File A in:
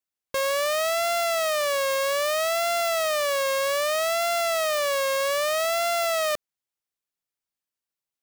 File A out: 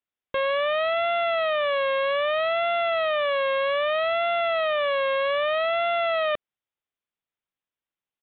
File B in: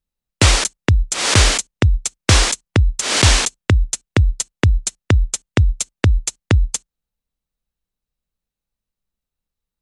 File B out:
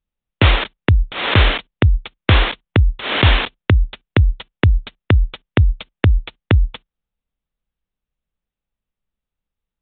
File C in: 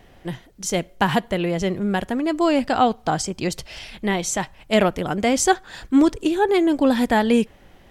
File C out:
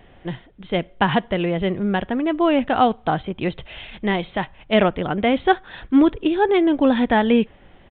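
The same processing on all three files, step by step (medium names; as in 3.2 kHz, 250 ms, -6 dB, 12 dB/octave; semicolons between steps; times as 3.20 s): resampled via 8 kHz; trim +1 dB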